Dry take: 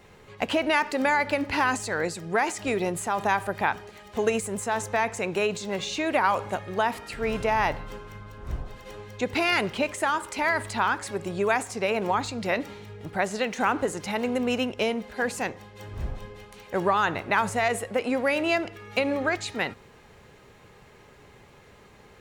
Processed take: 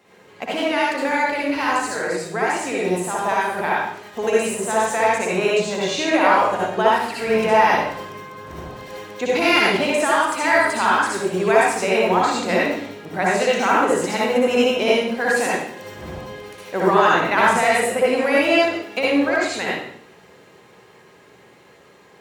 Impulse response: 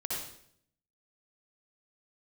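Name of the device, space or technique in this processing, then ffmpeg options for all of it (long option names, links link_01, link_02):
far laptop microphone: -filter_complex "[1:a]atrim=start_sample=2205[link_01];[0:a][link_01]afir=irnorm=-1:irlink=0,highpass=190,dynaudnorm=framelen=690:gausssize=13:maxgain=11.5dB,asettb=1/sr,asplit=3[link_02][link_03][link_04];[link_02]atrim=end=5.364[link_05];[link_03]atrim=start=5.36:end=7.14,asetpts=PTS-STARTPTS,afade=type=in:duration=0.004:curve=qsin,afade=type=out:start_time=1.776:duration=0.004:curve=qsin,highshelf=frequency=10000:gain=-5.5[link_06];[link_04]atrim=start=7.136[link_07];[link_05][link_06]acrossfade=duration=0.004:curve1=hsin:curve2=qsin[link_08];[link_08][link_07]acrossfade=duration=0.004:curve1=qsin:curve2=hsin"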